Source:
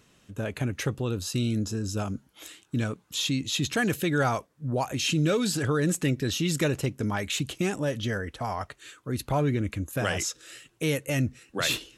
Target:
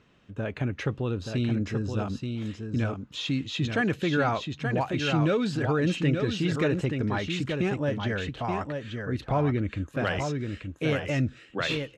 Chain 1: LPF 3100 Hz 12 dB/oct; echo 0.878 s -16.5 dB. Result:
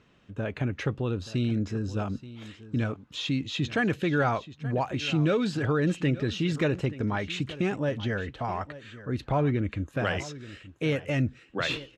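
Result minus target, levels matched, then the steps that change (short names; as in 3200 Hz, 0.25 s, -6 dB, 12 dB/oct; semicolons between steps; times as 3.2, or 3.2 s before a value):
echo-to-direct -11 dB
change: echo 0.878 s -5.5 dB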